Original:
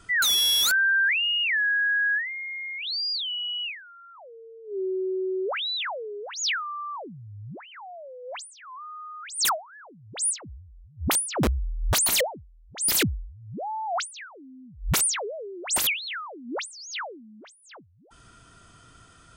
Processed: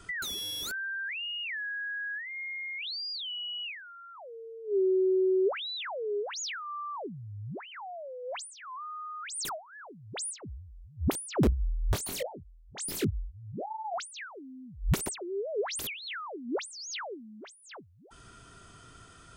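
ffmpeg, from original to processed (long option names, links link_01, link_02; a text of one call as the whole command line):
ffmpeg -i in.wav -filter_complex "[0:a]asettb=1/sr,asplit=3[link_01][link_02][link_03];[link_01]atrim=end=11.504[link_04];[link_02]atrim=start=11.5:end=13.94,asetpts=PTS-STARTPTS,afade=type=in:duration=0.004:curve=qsin,afade=type=out:start_time=2.436:duration=0.004:curve=qsin,flanger=delay=18.5:depth=5:speed=2.6[link_05];[link_03]atrim=start=13.936[link_06];[link_04][link_05]acrossfade=duration=0.004:curve1=hsin:curve2=qsin[link_07];[link_07][link_06]acrossfade=duration=0.004:curve1=qsin:curve2=hsin,asplit=3[link_08][link_09][link_10];[link_08]atrim=end=15.062[link_11];[link_09]atrim=start=15.058:end=15.792,asetpts=PTS-STARTPTS,areverse[link_12];[link_10]atrim=start=15.788[link_13];[link_11][link_12]acrossfade=duration=0.004:curve1=hsin:curve2=hsin[link_14];[link_14][link_13]acrossfade=duration=0.004:curve1=hsin:curve2=hsin,equalizer=frequency=400:width=7.1:gain=6,acrossover=split=470[link_15][link_16];[link_16]acompressor=threshold=-36dB:ratio=6[link_17];[link_15][link_17]amix=inputs=2:normalize=0" out.wav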